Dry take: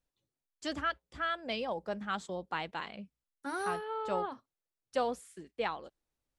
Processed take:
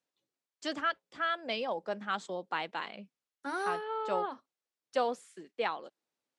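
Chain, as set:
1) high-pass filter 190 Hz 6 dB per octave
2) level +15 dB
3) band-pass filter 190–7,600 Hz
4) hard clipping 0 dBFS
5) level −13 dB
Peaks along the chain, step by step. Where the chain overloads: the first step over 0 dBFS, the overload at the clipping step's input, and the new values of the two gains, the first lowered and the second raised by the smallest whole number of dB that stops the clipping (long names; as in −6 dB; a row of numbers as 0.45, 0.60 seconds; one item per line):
−19.0, −4.0, −4.0, −4.0, −17.0 dBFS
no step passes full scale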